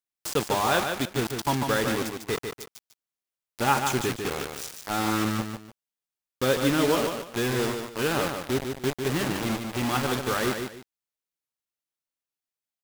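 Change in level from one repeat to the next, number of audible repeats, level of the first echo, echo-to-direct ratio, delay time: -11.5 dB, 2, -6.0 dB, -5.5 dB, 148 ms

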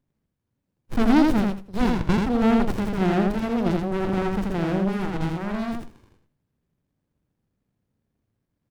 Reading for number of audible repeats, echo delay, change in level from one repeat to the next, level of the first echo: 3, 82 ms, -15.5 dB, -3.0 dB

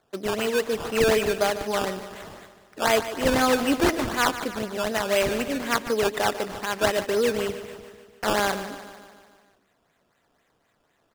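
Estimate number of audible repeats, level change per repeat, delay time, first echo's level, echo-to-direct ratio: 5, -4.5 dB, 148 ms, -12.5 dB, -10.5 dB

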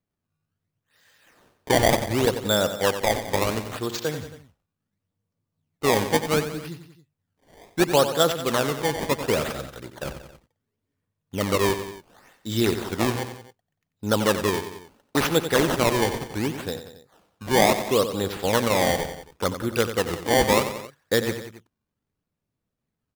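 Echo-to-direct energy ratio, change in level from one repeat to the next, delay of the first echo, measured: -9.0 dB, -4.5 dB, 91 ms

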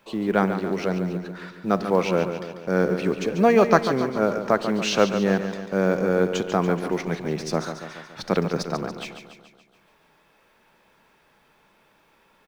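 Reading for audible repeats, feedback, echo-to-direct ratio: 6, 56%, -7.5 dB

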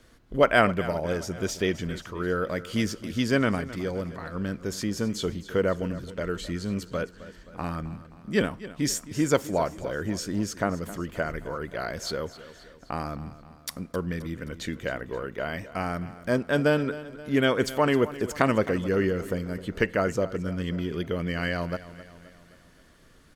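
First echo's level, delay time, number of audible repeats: -16.0 dB, 263 ms, 4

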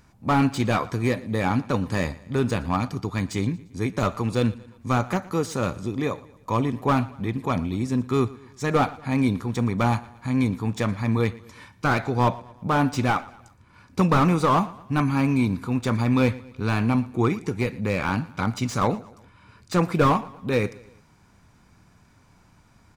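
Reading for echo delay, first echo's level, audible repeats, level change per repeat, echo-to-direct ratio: 116 ms, -20.5 dB, 3, -6.5 dB, -19.5 dB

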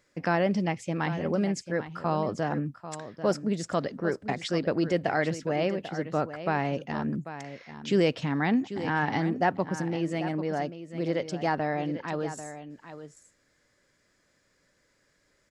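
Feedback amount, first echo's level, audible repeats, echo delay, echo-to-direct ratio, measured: no regular repeats, -12.0 dB, 1, 792 ms, -12.0 dB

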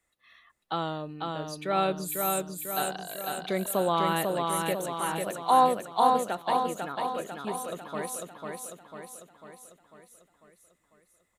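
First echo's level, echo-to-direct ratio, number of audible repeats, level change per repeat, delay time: -3.5 dB, -2.0 dB, 7, -5.0 dB, 497 ms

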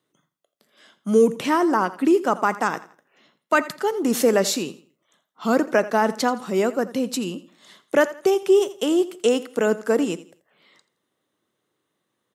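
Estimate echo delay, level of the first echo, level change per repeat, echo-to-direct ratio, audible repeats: 84 ms, -17.0 dB, -10.5 dB, -16.5 dB, 2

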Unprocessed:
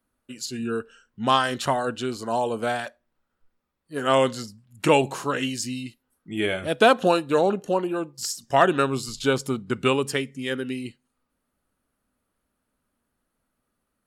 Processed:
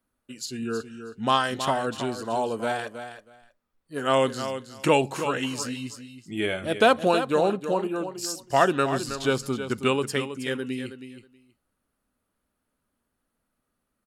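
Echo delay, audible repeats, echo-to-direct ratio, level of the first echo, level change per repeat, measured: 320 ms, 2, -10.0 dB, -10.0 dB, -16.0 dB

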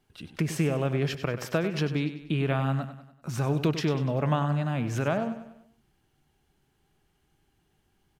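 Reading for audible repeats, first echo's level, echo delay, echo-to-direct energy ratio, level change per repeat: 4, -11.5 dB, 97 ms, -10.5 dB, -6.5 dB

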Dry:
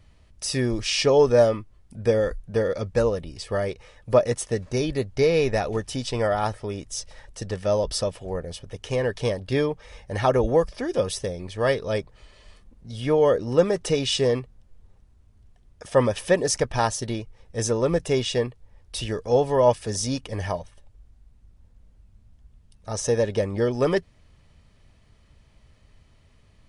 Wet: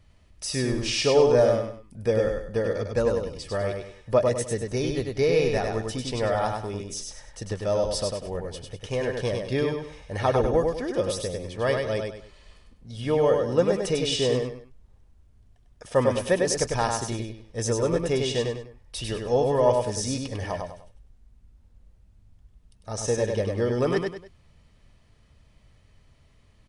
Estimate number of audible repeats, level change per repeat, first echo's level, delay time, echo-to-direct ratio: 3, -9.5 dB, -4.0 dB, 99 ms, -3.5 dB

